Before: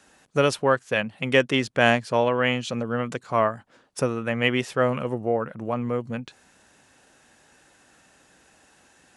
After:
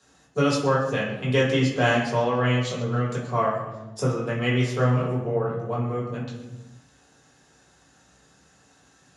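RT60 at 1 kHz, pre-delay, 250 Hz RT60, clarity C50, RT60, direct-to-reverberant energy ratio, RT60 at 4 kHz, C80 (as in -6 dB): 0.90 s, 3 ms, 1.5 s, 4.0 dB, 1.1 s, -7.0 dB, 0.85 s, 6.5 dB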